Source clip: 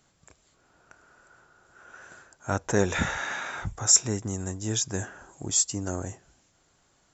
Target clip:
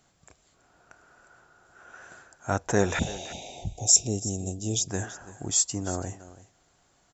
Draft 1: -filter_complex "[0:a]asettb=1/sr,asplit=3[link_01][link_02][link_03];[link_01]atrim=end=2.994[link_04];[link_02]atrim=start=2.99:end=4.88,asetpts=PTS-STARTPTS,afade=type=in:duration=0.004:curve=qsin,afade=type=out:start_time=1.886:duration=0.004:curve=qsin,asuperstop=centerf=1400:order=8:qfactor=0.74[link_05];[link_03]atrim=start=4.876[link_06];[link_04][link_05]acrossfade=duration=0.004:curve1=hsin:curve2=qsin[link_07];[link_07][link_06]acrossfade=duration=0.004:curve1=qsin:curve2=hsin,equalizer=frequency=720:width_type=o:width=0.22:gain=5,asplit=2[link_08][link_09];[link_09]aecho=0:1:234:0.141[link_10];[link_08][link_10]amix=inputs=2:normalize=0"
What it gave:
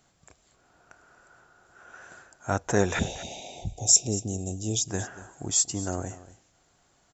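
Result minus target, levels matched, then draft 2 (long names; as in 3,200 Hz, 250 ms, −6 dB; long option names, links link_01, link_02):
echo 98 ms early
-filter_complex "[0:a]asettb=1/sr,asplit=3[link_01][link_02][link_03];[link_01]atrim=end=2.994[link_04];[link_02]atrim=start=2.99:end=4.88,asetpts=PTS-STARTPTS,afade=type=in:duration=0.004:curve=qsin,afade=type=out:start_time=1.886:duration=0.004:curve=qsin,asuperstop=centerf=1400:order=8:qfactor=0.74[link_05];[link_03]atrim=start=4.876[link_06];[link_04][link_05]acrossfade=duration=0.004:curve1=hsin:curve2=qsin[link_07];[link_07][link_06]acrossfade=duration=0.004:curve1=qsin:curve2=hsin,equalizer=frequency=720:width_type=o:width=0.22:gain=5,asplit=2[link_08][link_09];[link_09]aecho=0:1:332:0.141[link_10];[link_08][link_10]amix=inputs=2:normalize=0"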